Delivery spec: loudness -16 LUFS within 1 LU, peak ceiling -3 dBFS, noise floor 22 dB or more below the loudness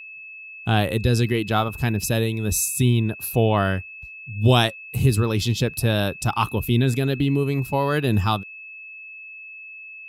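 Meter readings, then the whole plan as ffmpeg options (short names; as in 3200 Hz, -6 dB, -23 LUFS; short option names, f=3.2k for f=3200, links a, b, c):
steady tone 2600 Hz; tone level -37 dBFS; loudness -22.0 LUFS; peak -6.5 dBFS; loudness target -16.0 LUFS
-> -af "bandreject=f=2.6k:w=30"
-af "volume=6dB,alimiter=limit=-3dB:level=0:latency=1"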